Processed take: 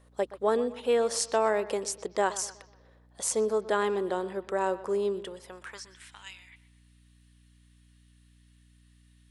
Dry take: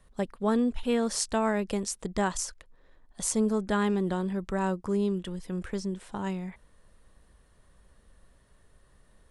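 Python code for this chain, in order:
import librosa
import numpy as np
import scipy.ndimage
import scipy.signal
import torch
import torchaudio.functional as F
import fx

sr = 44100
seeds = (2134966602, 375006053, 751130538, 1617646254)

y = fx.echo_bbd(x, sr, ms=123, stages=4096, feedback_pct=41, wet_db=-16.5)
y = fx.filter_sweep_highpass(y, sr, from_hz=460.0, to_hz=2700.0, start_s=5.27, end_s=6.25, q=1.7)
y = fx.add_hum(y, sr, base_hz=60, snr_db=28)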